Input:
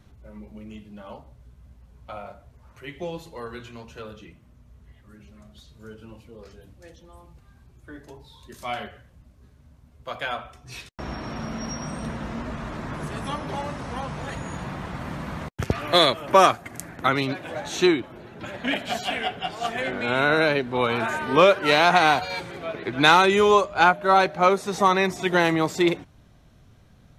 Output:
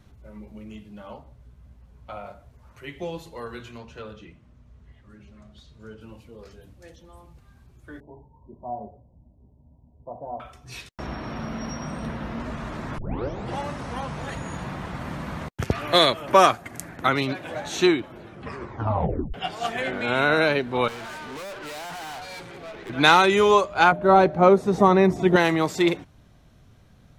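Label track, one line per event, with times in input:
1.060000	2.240000	high-shelf EQ 4,600 Hz −4.5 dB
3.780000	6.010000	high-frequency loss of the air 58 metres
8.000000	10.400000	Chebyshev low-pass with heavy ripple 980 Hz, ripple 3 dB
11.060000	12.400000	parametric band 7,600 Hz −9.5 dB 0.83 octaves
12.980000	12.980000	tape start 0.60 s
18.210000	18.210000	tape stop 1.13 s
20.880000	22.900000	tube saturation drive 35 dB, bias 0.65
23.920000	25.360000	tilt shelving filter lows +9 dB

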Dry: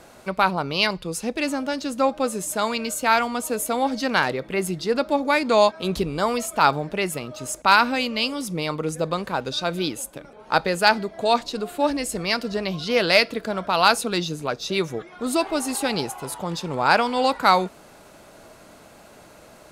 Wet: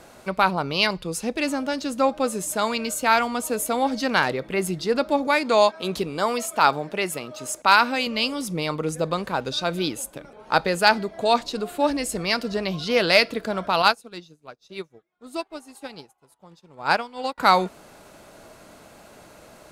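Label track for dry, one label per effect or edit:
5.270000	8.070000	high-pass filter 250 Hz 6 dB per octave
13.820000	17.380000	expander for the loud parts 2.5 to 1, over −38 dBFS

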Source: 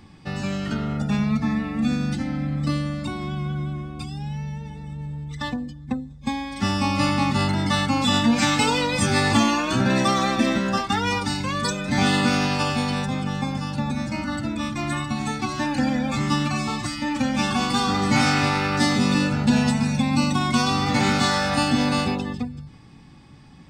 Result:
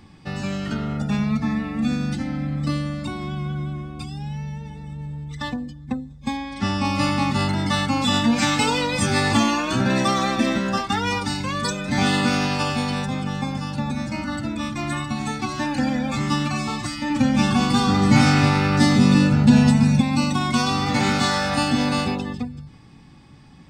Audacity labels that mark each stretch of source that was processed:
6.370000	6.850000	high-frequency loss of the air 52 metres
17.100000	20.010000	parametric band 130 Hz +7.5 dB 2.5 octaves

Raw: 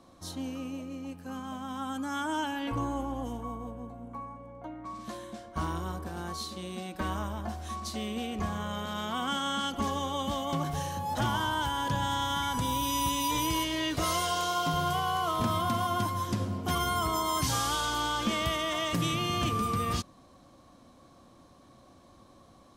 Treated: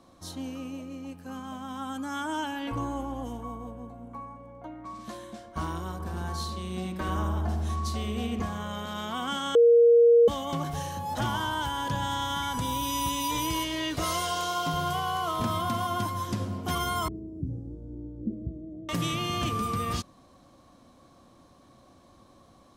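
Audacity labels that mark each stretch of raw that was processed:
5.920000	8.420000	feedback echo with a low-pass in the loop 76 ms, feedback 74%, low-pass 1,300 Hz, level −3.5 dB
9.550000	10.280000	beep over 470 Hz −14 dBFS
17.080000	18.890000	inverse Chebyshev low-pass filter stop band from 1,000 Hz, stop band 50 dB

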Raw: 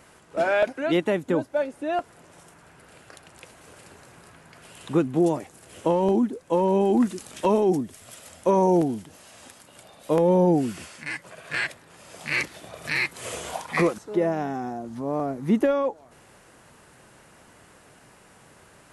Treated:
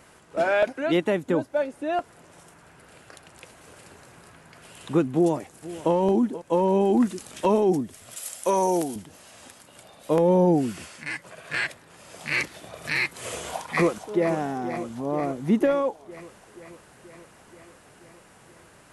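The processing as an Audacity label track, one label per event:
5.140000	5.930000	delay throw 480 ms, feedback 15%, level −16.5 dB
8.160000	8.960000	RIAA equalisation recording
13.320000	14.280000	delay throw 480 ms, feedback 70%, level −11 dB

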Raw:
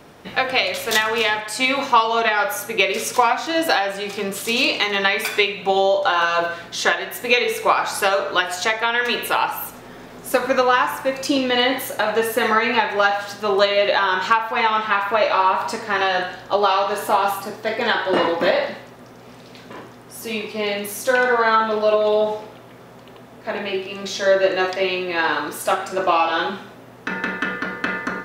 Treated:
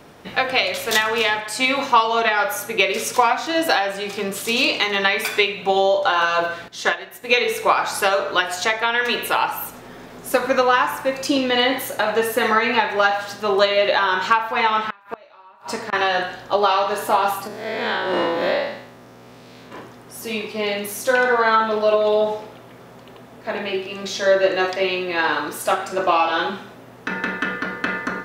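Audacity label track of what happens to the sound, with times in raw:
6.680000	7.350000	expander for the loud parts, over −37 dBFS
14.840000	15.930000	gate with flip shuts at −12 dBFS, range −30 dB
17.470000	19.720000	spectrum smeared in time width 136 ms

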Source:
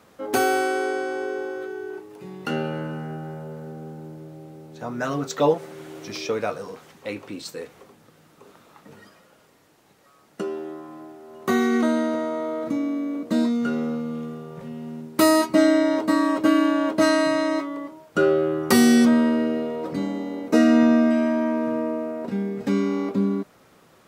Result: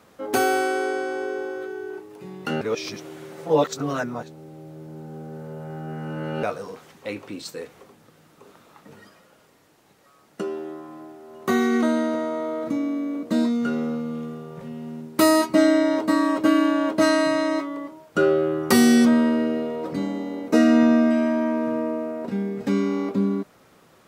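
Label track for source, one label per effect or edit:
2.610000	6.430000	reverse

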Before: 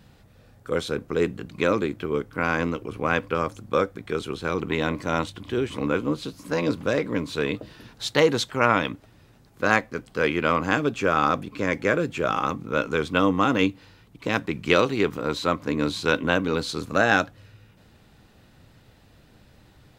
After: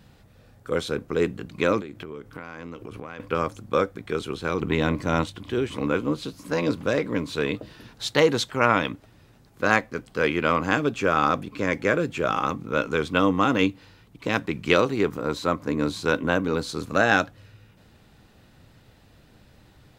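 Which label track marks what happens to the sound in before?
1.800000	3.200000	downward compressor 16 to 1, threshold −32 dBFS
4.610000	5.240000	low-shelf EQ 230 Hz +6.5 dB
14.760000	16.800000	parametric band 3,100 Hz −5.5 dB 1.3 octaves

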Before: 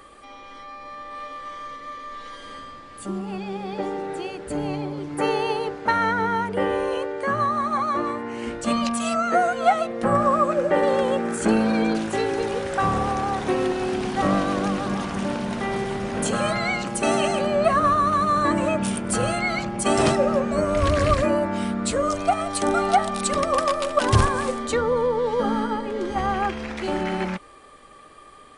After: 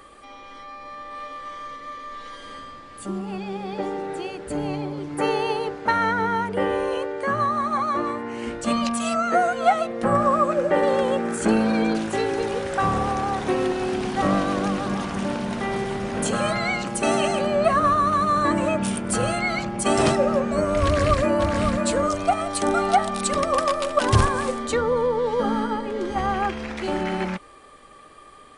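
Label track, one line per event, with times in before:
20.840000	21.510000	delay throw 550 ms, feedback 15%, level −4.5 dB

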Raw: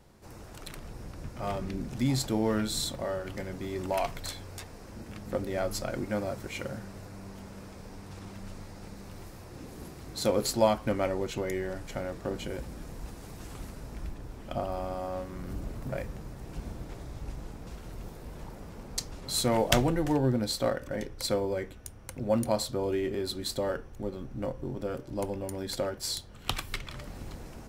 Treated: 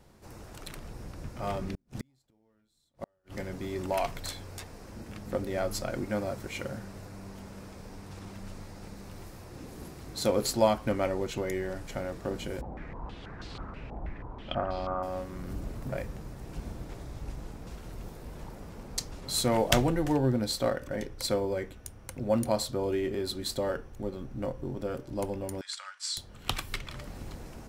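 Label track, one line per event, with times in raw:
1.660000	3.370000	gate with flip shuts at −25 dBFS, range −42 dB
12.610000	15.030000	low-pass on a step sequencer 6.2 Hz 790–4,200 Hz
25.610000	26.170000	elliptic band-pass filter 1,200–8,500 Hz, stop band 50 dB

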